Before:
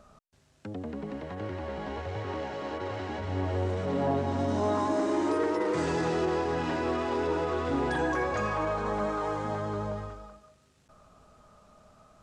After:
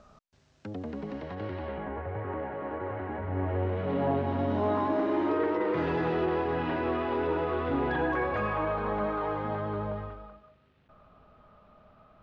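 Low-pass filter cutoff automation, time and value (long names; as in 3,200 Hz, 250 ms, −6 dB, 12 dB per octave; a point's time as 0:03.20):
low-pass filter 24 dB per octave
0:00.98 6,600 Hz
0:01.64 4,000 Hz
0:01.91 2,000 Hz
0:03.32 2,000 Hz
0:03.91 3,300 Hz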